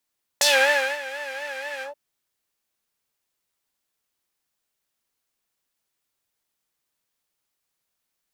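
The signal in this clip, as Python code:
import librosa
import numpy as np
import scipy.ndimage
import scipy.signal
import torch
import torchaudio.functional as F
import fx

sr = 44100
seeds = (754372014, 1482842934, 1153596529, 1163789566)

y = fx.sub_patch_vibrato(sr, seeds[0], note=73, wave='triangle', wave2='saw', interval_st=7, detune_cents=16, level2_db=-7.5, sub_db=-21, noise_db=-8.0, kind='bandpass', cutoff_hz=570.0, q=2.0, env_oct=3.5, env_decay_s=0.15, env_sustain_pct=50, attack_ms=4.1, decay_s=0.57, sustain_db=-18.0, release_s=0.11, note_s=1.42, lfo_hz=4.1, vibrato_cents=98)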